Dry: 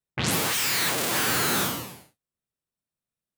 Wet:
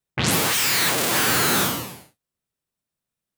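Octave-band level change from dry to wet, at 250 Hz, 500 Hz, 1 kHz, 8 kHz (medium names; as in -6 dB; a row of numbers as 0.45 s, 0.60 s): +4.5 dB, +4.5 dB, +4.5 dB, +4.5 dB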